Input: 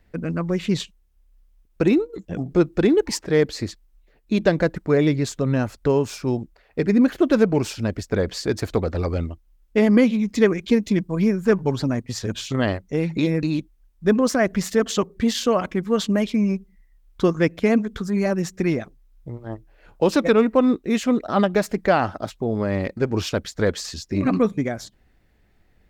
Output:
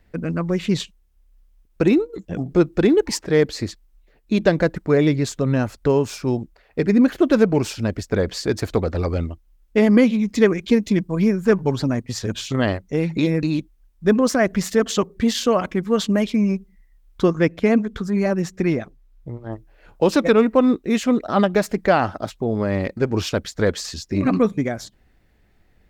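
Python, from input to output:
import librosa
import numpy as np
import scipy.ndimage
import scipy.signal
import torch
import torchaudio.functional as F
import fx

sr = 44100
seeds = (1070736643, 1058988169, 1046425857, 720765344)

y = fx.high_shelf(x, sr, hz=4800.0, db=-5.5, at=(17.24, 19.53))
y = y * librosa.db_to_amplitude(1.5)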